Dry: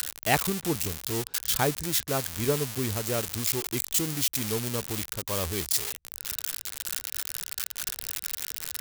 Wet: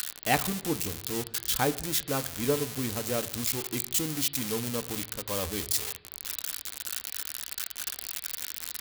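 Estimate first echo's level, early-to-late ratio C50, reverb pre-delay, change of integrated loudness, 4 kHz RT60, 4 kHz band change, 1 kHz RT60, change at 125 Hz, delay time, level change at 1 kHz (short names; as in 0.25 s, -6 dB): none, 17.5 dB, 4 ms, -2.0 dB, 0.65 s, -1.5 dB, 0.75 s, -4.0 dB, none, -1.0 dB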